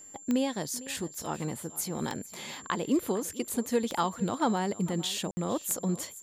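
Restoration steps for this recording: de-click; notch 7300 Hz, Q 30; room tone fill 5.31–5.37; inverse comb 0.454 s -18 dB

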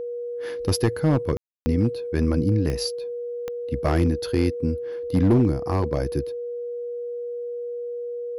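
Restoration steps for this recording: clip repair -12.5 dBFS; de-click; notch 480 Hz, Q 30; room tone fill 1.37–1.66

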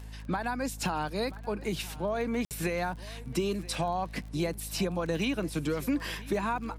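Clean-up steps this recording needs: de-click; de-hum 53.1 Hz, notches 5; interpolate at 2.45, 58 ms; inverse comb 0.981 s -19.5 dB

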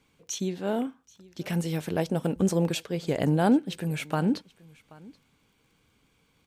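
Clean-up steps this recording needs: de-click; inverse comb 0.78 s -23 dB

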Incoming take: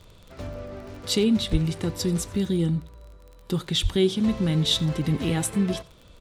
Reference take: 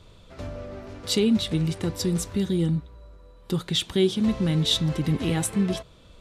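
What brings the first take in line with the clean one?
de-click; 1.51–1.63 HPF 140 Hz 24 dB/oct; 3.82–3.94 HPF 140 Hz 24 dB/oct; inverse comb 90 ms -23 dB

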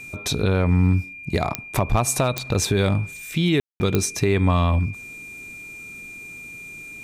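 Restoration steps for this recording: de-click; notch 2400 Hz, Q 30; room tone fill 3.6–3.8

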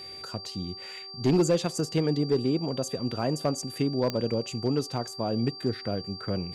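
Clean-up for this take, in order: clip repair -16.5 dBFS; de-click; de-hum 386.8 Hz, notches 3; notch 4700 Hz, Q 30

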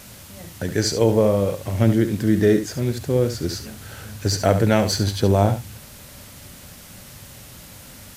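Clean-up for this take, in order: denoiser 23 dB, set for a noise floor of -42 dBFS; inverse comb 70 ms -10 dB

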